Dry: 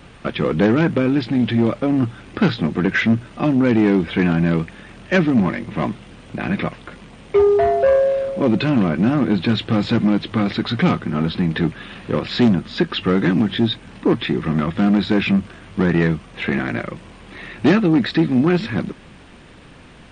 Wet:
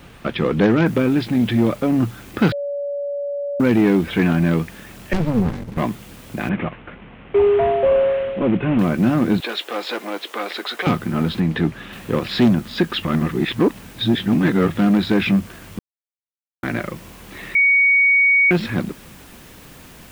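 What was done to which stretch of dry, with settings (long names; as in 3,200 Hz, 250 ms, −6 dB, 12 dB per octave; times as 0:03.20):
0:00.86: noise floor change −61 dB −48 dB
0:02.52–0:03.60: beep over 570 Hz −22 dBFS
0:05.13–0:05.78: windowed peak hold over 65 samples
0:06.49–0:08.79: variable-slope delta modulation 16 kbit/s
0:09.40–0:10.87: high-pass filter 420 Hz 24 dB per octave
0:11.40–0:11.93: low-pass filter 3,900 Hz 6 dB per octave
0:13.05–0:14.69: reverse
0:15.79–0:16.63: silence
0:17.55–0:18.51: beep over 2,240 Hz −11 dBFS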